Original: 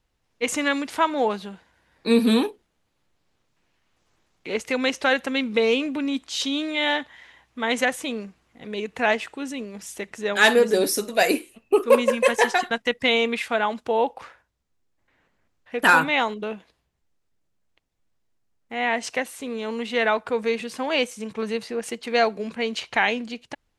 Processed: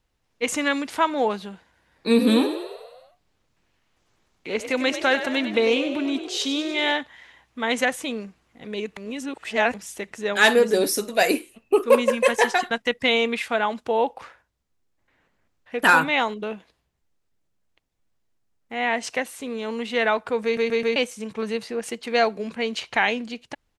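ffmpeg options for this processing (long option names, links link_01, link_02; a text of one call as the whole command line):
ffmpeg -i in.wav -filter_complex "[0:a]asplit=3[link_01][link_02][link_03];[link_01]afade=type=out:start_time=2.18:duration=0.02[link_04];[link_02]asplit=8[link_05][link_06][link_07][link_08][link_09][link_10][link_11][link_12];[link_06]adelay=97,afreqshift=43,volume=-10.5dB[link_13];[link_07]adelay=194,afreqshift=86,volume=-14.8dB[link_14];[link_08]adelay=291,afreqshift=129,volume=-19.1dB[link_15];[link_09]adelay=388,afreqshift=172,volume=-23.4dB[link_16];[link_10]adelay=485,afreqshift=215,volume=-27.7dB[link_17];[link_11]adelay=582,afreqshift=258,volume=-32dB[link_18];[link_12]adelay=679,afreqshift=301,volume=-36.3dB[link_19];[link_05][link_13][link_14][link_15][link_16][link_17][link_18][link_19]amix=inputs=8:normalize=0,afade=type=in:start_time=2.18:duration=0.02,afade=type=out:start_time=6.91:duration=0.02[link_20];[link_03]afade=type=in:start_time=6.91:duration=0.02[link_21];[link_04][link_20][link_21]amix=inputs=3:normalize=0,asplit=7[link_22][link_23][link_24][link_25][link_26][link_27][link_28];[link_22]atrim=end=8.972[link_29];[link_23]atrim=start=8.968:end=9.742,asetpts=PTS-STARTPTS,areverse[link_30];[link_24]atrim=start=9.738:end=20.572[link_31];[link_25]atrim=start=20.438:end=20.572[link_32];[link_26]atrim=start=20.438:end=20.572[link_33];[link_27]atrim=start=20.438:end=20.572[link_34];[link_28]atrim=start=20.958[link_35];[link_29][link_30]acrossfade=duration=0.004:curve1=hsin:curve2=hsin[link_36];[link_36][link_31]acrossfade=duration=0.004:curve1=hsin:curve2=hsin[link_37];[link_37][link_32]acrossfade=duration=0.004:curve1=hsin:curve2=hsin[link_38];[link_38][link_33]acrossfade=duration=0.004:curve1=hsin:curve2=hsin[link_39];[link_39][link_34]acrossfade=duration=0.004:curve1=hsin:curve2=hsin[link_40];[link_40][link_35]acrossfade=duration=0.004:curve1=hsin:curve2=hsin" out.wav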